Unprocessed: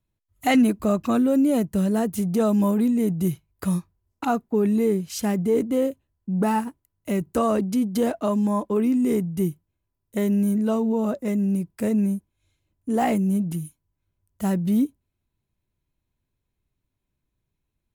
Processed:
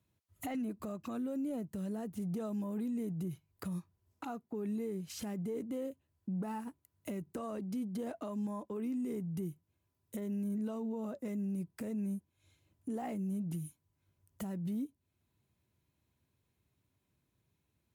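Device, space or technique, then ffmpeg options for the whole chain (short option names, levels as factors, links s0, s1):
podcast mastering chain: -af "highpass=f=70:w=0.5412,highpass=f=70:w=1.3066,deesser=0.8,acompressor=threshold=0.0251:ratio=3,alimiter=level_in=3.16:limit=0.0631:level=0:latency=1:release=462,volume=0.316,volume=1.41" -ar 48000 -c:a libmp3lame -b:a 112k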